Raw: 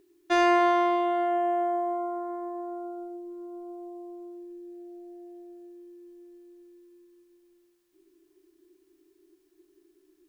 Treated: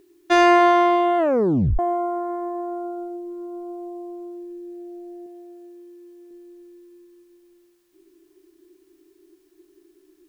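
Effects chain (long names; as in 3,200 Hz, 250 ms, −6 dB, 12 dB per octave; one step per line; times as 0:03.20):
0:01.18: tape stop 0.61 s
0:05.26–0:06.31: low-shelf EQ 210 Hz −11 dB
level +7 dB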